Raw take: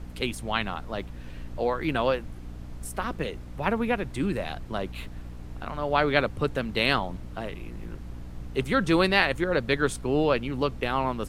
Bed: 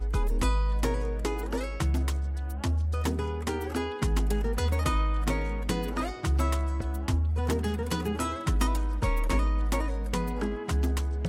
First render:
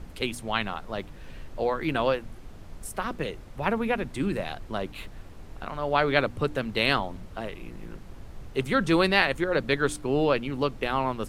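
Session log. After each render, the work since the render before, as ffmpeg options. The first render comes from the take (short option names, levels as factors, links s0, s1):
-af "bandreject=f=60:t=h:w=4,bandreject=f=120:t=h:w=4,bandreject=f=180:t=h:w=4,bandreject=f=240:t=h:w=4,bandreject=f=300:t=h:w=4"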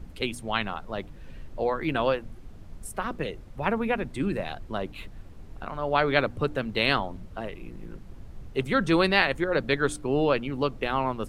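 -af "afftdn=nr=6:nf=-44"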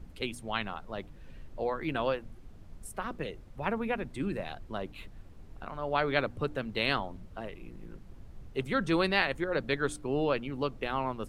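-af "volume=0.531"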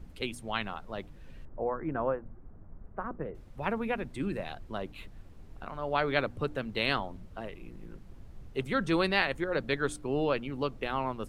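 -filter_complex "[0:a]asettb=1/sr,asplit=3[s0][s1][s2];[s0]atrim=end=1.454[s3];[s1]atrim=start=1.45:end=3.35,asetpts=PTS-STARTPTS,afade=t=in:d=0.004:c=qsin,afade=t=out:st=1.896:d=0.004:c=qsin,lowpass=f=1500:w=0.5412,lowpass=f=1500:w=1.3066[s4];[s2]atrim=start=3.346[s5];[s3][s4]acrossfade=d=0.004:c1=hsin:c2=qsin[s6];[s6][s5]acrossfade=d=0.004:c1=qsin:c2=hsin"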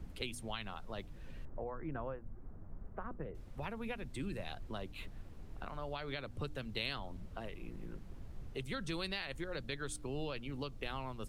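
-filter_complex "[0:a]alimiter=limit=0.112:level=0:latency=1:release=191,acrossover=split=120|3000[s0][s1][s2];[s1]acompressor=threshold=0.00631:ratio=3[s3];[s0][s3][s2]amix=inputs=3:normalize=0"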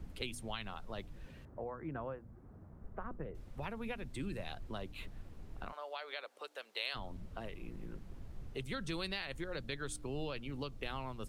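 -filter_complex "[0:a]asettb=1/sr,asplit=3[s0][s1][s2];[s0]atrim=end=1.264[s3];[s1]atrim=start=1.26:end=2.84,asetpts=PTS-STARTPTS,afade=t=in:d=0.004:c=qsin,afade=t=out:st=1.576:d=0.004:c=qsin,highpass=62[s4];[s2]atrim=start=2.836[s5];[s3][s4]acrossfade=d=0.004:c1=hsin:c2=qsin[s6];[s6][s5]acrossfade=d=0.004:c1=qsin:c2=hsin,asplit=3[s7][s8][s9];[s7]afade=t=out:st=5.71:d=0.02[s10];[s8]highpass=f=500:w=0.5412,highpass=f=500:w=1.3066,afade=t=in:st=5.71:d=0.02,afade=t=out:st=6.94:d=0.02[s11];[s9]afade=t=in:st=6.94:d=0.02[s12];[s10][s11][s12]amix=inputs=3:normalize=0"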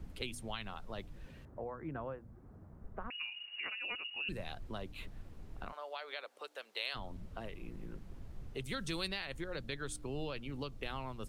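-filter_complex "[0:a]asettb=1/sr,asplit=3[s0][s1][s2];[s0]atrim=end=3.104[s3];[s1]atrim=start=3.1:end=4.29,asetpts=PTS-STARTPTS,afade=t=in:d=0.004:c=qsin,afade=t=out:st=1.186:d=0.004:c=qsin,lowpass=f=2500:t=q:w=0.5098,lowpass=f=2500:t=q:w=0.6013,lowpass=f=2500:t=q:w=0.9,lowpass=f=2500:t=q:w=2.563,afreqshift=-2900[s4];[s2]atrim=start=4.286[s5];[s3][s4]acrossfade=d=0.004:c1=hsin:c2=qsin[s6];[s6][s5]acrossfade=d=0.004:c1=qsin:c2=hsin,asettb=1/sr,asplit=3[s7][s8][s9];[s7]atrim=end=8.644[s10];[s8]atrim=start=8.64:end=9.08,asetpts=PTS-STARTPTS,afade=t=in:d=0.004:c=qsin,afade=t=out:st=0.436:d=0.004:c=qsin,highshelf=f=3900:g=7[s11];[s9]atrim=start=9.076[s12];[s10][s11]acrossfade=d=0.004:c1=hsin:c2=qsin[s13];[s13][s12]acrossfade=d=0.004:c1=qsin:c2=hsin"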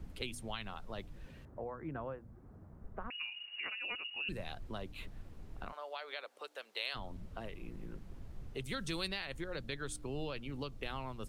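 -af anull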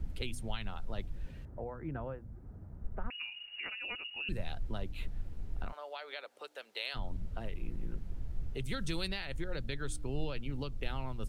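-af "lowshelf=f=110:g=12,bandreject=f=1100:w=11"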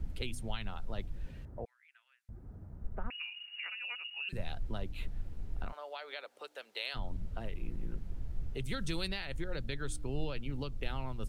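-filter_complex "[0:a]asettb=1/sr,asplit=3[s0][s1][s2];[s0]atrim=end=1.654[s3];[s1]atrim=start=1.65:end=2.29,asetpts=PTS-STARTPTS,afade=t=in:d=0.004:c=qsin,afade=t=out:st=0.636:d=0.004:c=qsin,asuperpass=centerf=5600:order=8:qfactor=0.56[s4];[s2]atrim=start=2.286[s5];[s3][s4]acrossfade=d=0.004:c1=hsin:c2=qsin[s6];[s6][s5]acrossfade=d=0.004:c1=qsin:c2=hsin,asettb=1/sr,asplit=3[s7][s8][s9];[s7]atrim=end=3.194[s10];[s8]atrim=start=3.19:end=4.33,asetpts=PTS-STARTPTS,afade=t=in:d=0.004:c=qsin,afade=t=out:st=1.136:d=0.004:c=qsin,highpass=970[s11];[s9]atrim=start=4.326[s12];[s10][s11]acrossfade=d=0.004:c1=hsin:c2=qsin[s13];[s13][s12]acrossfade=d=0.004:c1=qsin:c2=hsin"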